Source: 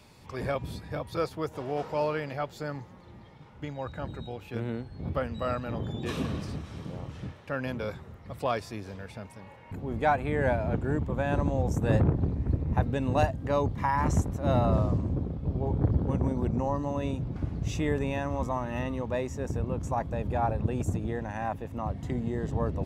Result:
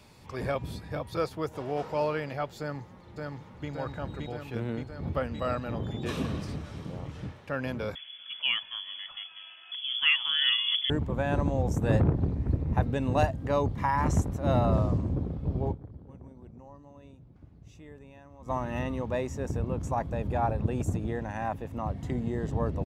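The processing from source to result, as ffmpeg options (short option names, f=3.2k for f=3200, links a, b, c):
-filter_complex "[0:a]asplit=2[a][b];[b]afade=t=in:st=2.59:d=0.01,afade=t=out:st=3.69:d=0.01,aecho=0:1:570|1140|1710|2280|2850|3420|3990|4560|5130|5700|6270|6840:0.749894|0.562421|0.421815|0.316362|0.237271|0.177953|0.133465|0.100099|0.0750741|0.0563056|0.0422292|0.0316719[c];[a][c]amix=inputs=2:normalize=0,asettb=1/sr,asplit=3[d][e][f];[d]atrim=end=7.954[g];[e]atrim=start=7.95:end=10.9,asetpts=PTS-STARTPTS,afade=t=in:d=0.004:c=qsin,afade=t=out:st=2.946:d=0.004:c=qsin,lowpass=f=3k:t=q:w=0.5098,lowpass=f=3k:t=q:w=0.6013,lowpass=f=3k:t=q:w=0.9,lowpass=f=3k:t=q:w=2.563,afreqshift=-3500[h];[f]atrim=start=10.896[i];[g][h]acrossfade=d=0.004:c1=hsin:c2=qsin[j];[j][i]acrossfade=d=0.004:c1=qsin:c2=hsin,asplit=3[k][l][m];[k]atrim=end=15.94,asetpts=PTS-STARTPTS,afade=t=out:st=15.71:d=0.23:c=exp:silence=0.0944061[n];[l]atrim=start=15.94:end=18.27,asetpts=PTS-STARTPTS,volume=-20.5dB[o];[m]atrim=start=18.27,asetpts=PTS-STARTPTS,afade=t=in:d=0.23:c=exp:silence=0.0944061[p];[n][o][p]concat=n=3:v=0:a=1"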